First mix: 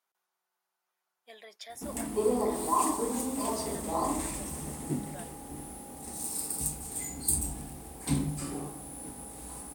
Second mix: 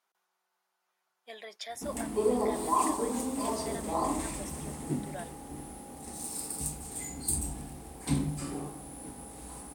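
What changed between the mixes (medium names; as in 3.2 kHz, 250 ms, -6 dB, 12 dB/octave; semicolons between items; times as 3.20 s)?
speech +5.0 dB; master: add treble shelf 12 kHz -10 dB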